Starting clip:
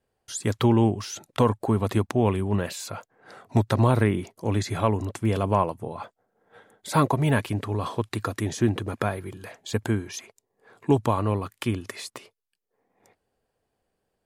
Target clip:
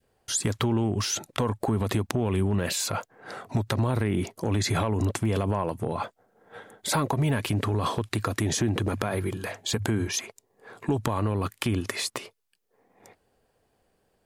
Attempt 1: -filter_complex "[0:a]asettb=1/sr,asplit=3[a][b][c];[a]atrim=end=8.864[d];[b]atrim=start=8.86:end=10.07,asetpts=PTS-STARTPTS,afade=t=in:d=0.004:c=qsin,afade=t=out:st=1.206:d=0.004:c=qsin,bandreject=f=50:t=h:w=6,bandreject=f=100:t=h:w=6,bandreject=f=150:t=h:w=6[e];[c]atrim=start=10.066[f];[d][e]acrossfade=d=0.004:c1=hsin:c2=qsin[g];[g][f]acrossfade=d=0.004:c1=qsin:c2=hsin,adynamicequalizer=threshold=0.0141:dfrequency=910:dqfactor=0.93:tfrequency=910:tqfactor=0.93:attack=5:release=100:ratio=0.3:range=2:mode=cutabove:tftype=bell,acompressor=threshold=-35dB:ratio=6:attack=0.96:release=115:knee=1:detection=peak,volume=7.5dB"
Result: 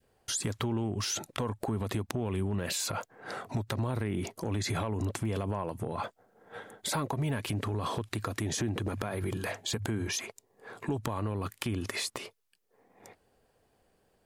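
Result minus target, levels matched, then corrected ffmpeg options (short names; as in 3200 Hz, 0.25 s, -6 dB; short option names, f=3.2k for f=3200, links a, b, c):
compressor: peak gain reduction +6.5 dB
-filter_complex "[0:a]asettb=1/sr,asplit=3[a][b][c];[a]atrim=end=8.864[d];[b]atrim=start=8.86:end=10.07,asetpts=PTS-STARTPTS,afade=t=in:d=0.004:c=qsin,afade=t=out:st=1.206:d=0.004:c=qsin,bandreject=f=50:t=h:w=6,bandreject=f=100:t=h:w=6,bandreject=f=150:t=h:w=6[e];[c]atrim=start=10.066[f];[d][e]acrossfade=d=0.004:c1=hsin:c2=qsin[g];[g][f]acrossfade=d=0.004:c1=qsin:c2=hsin,adynamicequalizer=threshold=0.0141:dfrequency=910:dqfactor=0.93:tfrequency=910:tqfactor=0.93:attack=5:release=100:ratio=0.3:range=2:mode=cutabove:tftype=bell,acompressor=threshold=-27dB:ratio=6:attack=0.96:release=115:knee=1:detection=peak,volume=7.5dB"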